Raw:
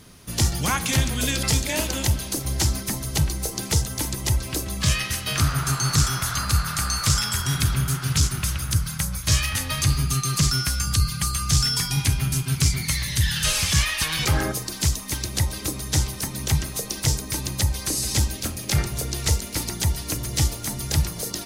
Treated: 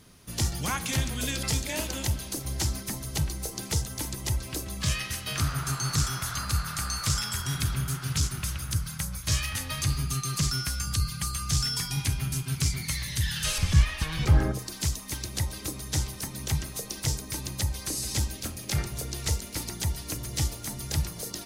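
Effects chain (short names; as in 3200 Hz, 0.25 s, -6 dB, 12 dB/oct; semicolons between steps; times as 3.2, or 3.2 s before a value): 13.58–14.59 tilt -2.5 dB/oct; reverb RT60 0.25 s, pre-delay 0.105 s, DRR 30.5 dB; gain -6.5 dB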